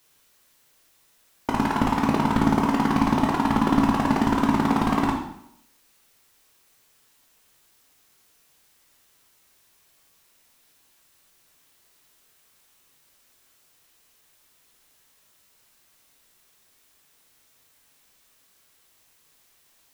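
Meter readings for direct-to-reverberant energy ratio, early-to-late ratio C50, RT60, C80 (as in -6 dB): 0.0 dB, 5.0 dB, 0.70 s, 7.5 dB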